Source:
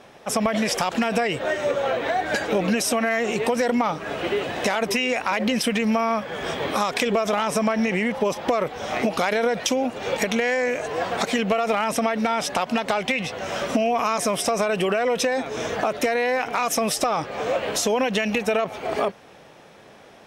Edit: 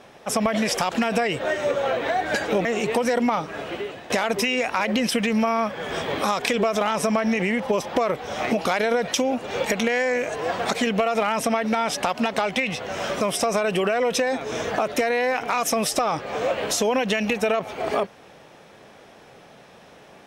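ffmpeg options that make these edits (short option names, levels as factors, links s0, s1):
-filter_complex "[0:a]asplit=4[s0][s1][s2][s3];[s0]atrim=end=2.652[s4];[s1]atrim=start=3.168:end=4.62,asetpts=PTS-STARTPTS,afade=t=out:st=0.682:d=0.77:silence=0.188365[s5];[s2]atrim=start=4.62:end=13.732,asetpts=PTS-STARTPTS,afade=t=in:d=0.004:c=hsin:silence=0.188365[s6];[s3]atrim=start=14.258[s7];[s5][s6]concat=n=2:v=0:a=1[s8];[s4][s8]acrossfade=d=0.004:c1=hsin:c2=hsin[s9];[s9][s7]acrossfade=d=0.004:c1=hsin:c2=hsin"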